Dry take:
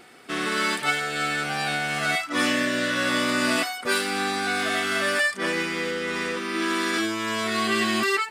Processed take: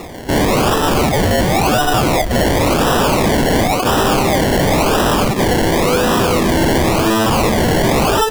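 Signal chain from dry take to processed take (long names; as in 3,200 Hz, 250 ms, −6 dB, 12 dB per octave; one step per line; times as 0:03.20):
0:01.01–0:02.40: linear-phase brick-wall band-pass 650–2,600 Hz
sine wavefolder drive 16 dB, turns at −10.5 dBFS
sample-and-hold swept by an LFO 28×, swing 60% 0.94 Hz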